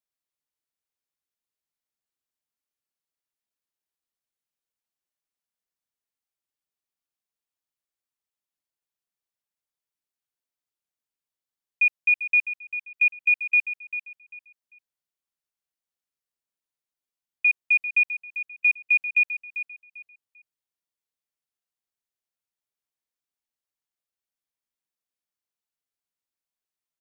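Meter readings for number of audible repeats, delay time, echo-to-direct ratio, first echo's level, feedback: 3, 0.395 s, -11.0 dB, -11.5 dB, 26%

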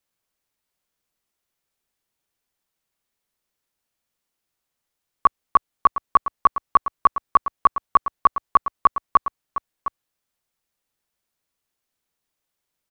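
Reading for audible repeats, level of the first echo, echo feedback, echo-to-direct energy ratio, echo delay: 1, -11.5 dB, no steady repeat, -11.5 dB, 0.71 s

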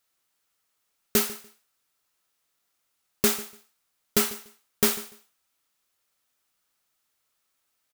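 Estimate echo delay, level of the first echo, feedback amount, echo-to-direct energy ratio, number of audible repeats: 0.146 s, -18.5 dB, 19%, -18.5 dB, 2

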